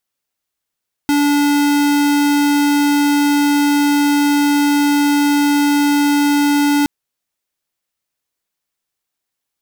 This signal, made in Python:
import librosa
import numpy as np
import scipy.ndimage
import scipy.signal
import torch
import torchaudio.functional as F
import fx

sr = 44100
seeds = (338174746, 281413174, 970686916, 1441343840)

y = fx.tone(sr, length_s=5.77, wave='square', hz=289.0, level_db=-13.5)